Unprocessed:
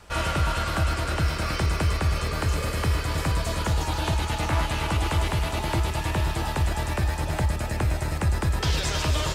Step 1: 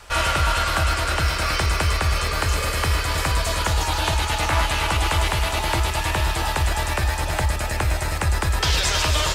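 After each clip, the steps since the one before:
parametric band 180 Hz −11 dB 2.8 octaves
level +8 dB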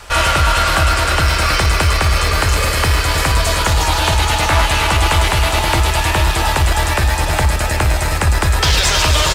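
in parallel at −6 dB: hard clipping −21.5 dBFS, distortion −9 dB
on the sum: single-tap delay 470 ms −12 dB
level +4.5 dB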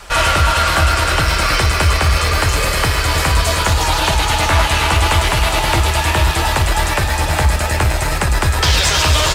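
flanger 0.73 Hz, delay 4.8 ms, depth 9.9 ms, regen −47%
level +4 dB

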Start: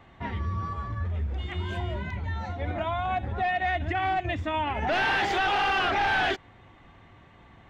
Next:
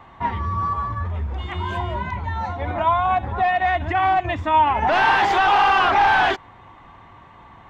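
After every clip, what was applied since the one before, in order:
parametric band 1,000 Hz +12 dB 0.7 octaves
level +3.5 dB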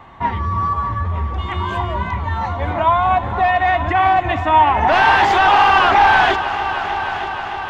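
echo machine with several playback heads 309 ms, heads all three, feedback 67%, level −16 dB
level +4 dB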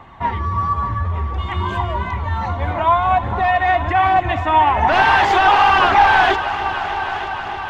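phase shifter 1.2 Hz, delay 3 ms, feedback 26%
level −1 dB

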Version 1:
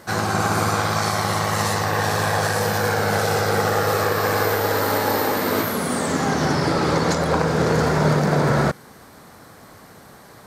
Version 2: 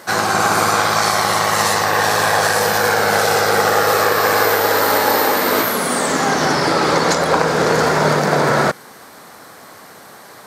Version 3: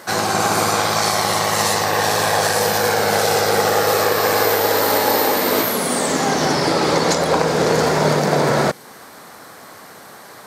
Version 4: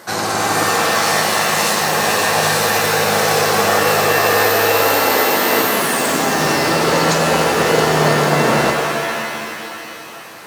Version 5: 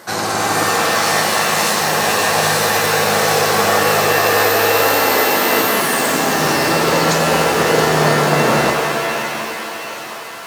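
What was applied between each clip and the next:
high-pass filter 470 Hz 6 dB per octave; level +7.5 dB
dynamic equaliser 1,400 Hz, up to −6 dB, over −31 dBFS, Q 1.4
reverb with rising layers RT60 2.6 s, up +7 semitones, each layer −2 dB, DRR 3.5 dB; level −1 dB
feedback echo with a high-pass in the loop 715 ms, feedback 69%, high-pass 440 Hz, level −12.5 dB

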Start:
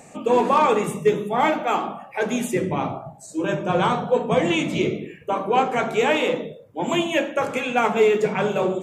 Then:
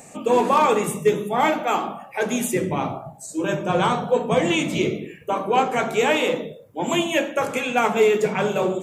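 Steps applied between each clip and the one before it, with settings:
high-shelf EQ 7,500 Hz +10.5 dB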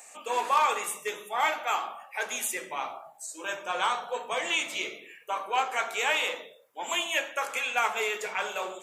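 high-pass filter 1,000 Hz 12 dB per octave
level −2.5 dB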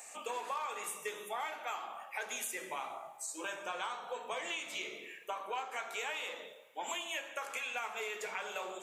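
downward compressor 6 to 1, threshold −36 dBFS, peak gain reduction 16 dB
dense smooth reverb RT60 1.6 s, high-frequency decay 0.9×, DRR 12.5 dB
level −1 dB

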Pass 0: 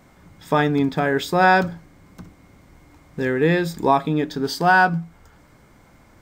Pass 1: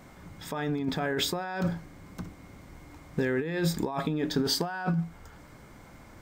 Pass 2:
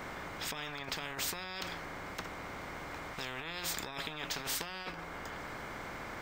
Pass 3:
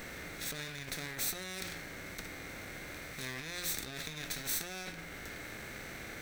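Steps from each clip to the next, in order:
compressor whose output falls as the input rises −25 dBFS, ratio −1; level −4.5 dB
parametric band 11,000 Hz −14.5 dB 2.1 octaves; every bin compressed towards the loudest bin 10 to 1; level −2.5 dB
lower of the sound and its delayed copy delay 0.49 ms; high-shelf EQ 6,200 Hz +10.5 dB; harmonic and percussive parts rebalanced harmonic +7 dB; level −5.5 dB

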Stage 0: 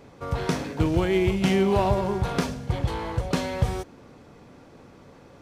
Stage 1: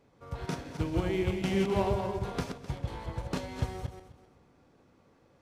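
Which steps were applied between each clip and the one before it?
feedback delay that plays each chunk backwards 129 ms, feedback 49%, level −4 dB
expander for the loud parts 1.5 to 1, over −33 dBFS
level −7.5 dB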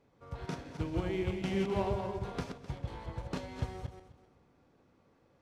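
high-shelf EQ 10,000 Hz −10.5 dB
level −4 dB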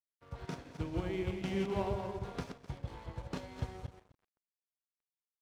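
dead-zone distortion −56 dBFS
level −2 dB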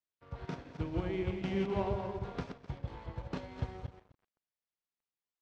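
high-frequency loss of the air 120 metres
level +1.5 dB

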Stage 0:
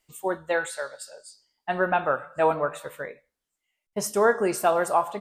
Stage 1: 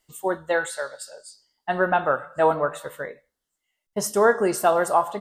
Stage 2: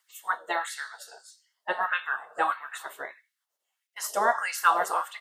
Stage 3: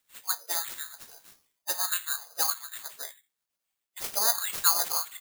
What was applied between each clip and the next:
notch filter 2,400 Hz, Q 5.1; level +2.5 dB
gate on every frequency bin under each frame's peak −10 dB weak; auto-filter high-pass sine 1.6 Hz 490–2,300 Hz
bad sample-rate conversion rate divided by 8×, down none, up zero stuff; level −10.5 dB

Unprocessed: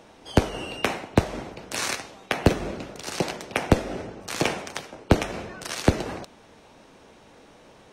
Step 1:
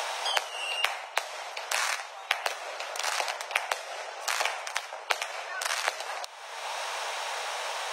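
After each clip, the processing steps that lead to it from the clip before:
inverse Chebyshev high-pass filter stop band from 260 Hz, stop band 50 dB
multiband upward and downward compressor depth 100%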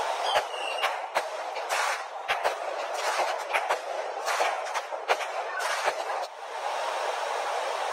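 random phases in long frames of 50 ms
tilt shelving filter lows +8 dB, about 1,100 Hz
level +4 dB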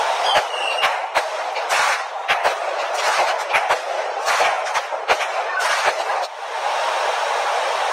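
mid-hump overdrive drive 11 dB, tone 6,800 Hz, clips at −9 dBFS
level +5 dB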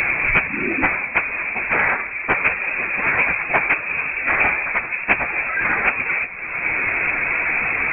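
voice inversion scrambler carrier 3,100 Hz

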